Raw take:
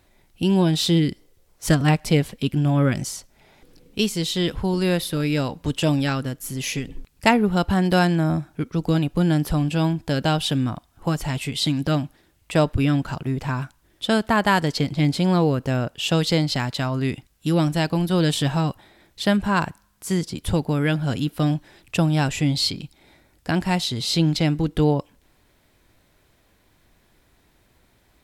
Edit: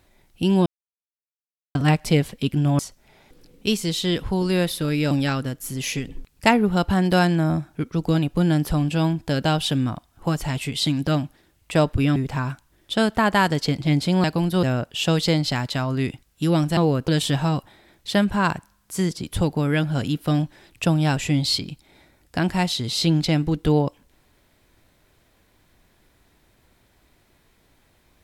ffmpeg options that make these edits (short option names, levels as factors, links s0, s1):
-filter_complex "[0:a]asplit=10[s0][s1][s2][s3][s4][s5][s6][s7][s8][s9];[s0]atrim=end=0.66,asetpts=PTS-STARTPTS,afade=t=out:st=0.656:d=0.004:c=hsin[s10];[s1]atrim=start=0.66:end=1.75,asetpts=PTS-STARTPTS,volume=0[s11];[s2]atrim=start=1.75:end=2.792,asetpts=PTS-STARTPTS,afade=t=in:d=0.004:c=hsin[s12];[s3]atrim=start=3.108:end=5.432[s13];[s4]atrim=start=5.908:end=12.962[s14];[s5]atrim=start=13.278:end=15.362[s15];[s6]atrim=start=17.808:end=18.202[s16];[s7]atrim=start=15.668:end=17.812[s17];[s8]atrim=start=15.358:end=15.672[s18];[s9]atrim=start=18.198[s19];[s10][s11][s12]concat=n=3:v=0:a=1[s20];[s20][s13]acrossfade=d=0.004:c1=hsin:c2=hsin[s21];[s21][s14]acrossfade=d=0.004:c1=hsin:c2=hsin[s22];[s22][s15]acrossfade=d=0.004:c1=hsin:c2=hsin[s23];[s23][s16]acrossfade=d=0.004:c1=hsin:c2=hsin[s24];[s24][s17]acrossfade=d=0.004:c1=hsin:c2=hsin[s25];[s25][s18]acrossfade=d=0.004:c1=hsin:c2=hsin[s26];[s26][s19]acrossfade=d=0.004:c1=hsin:c2=hsin"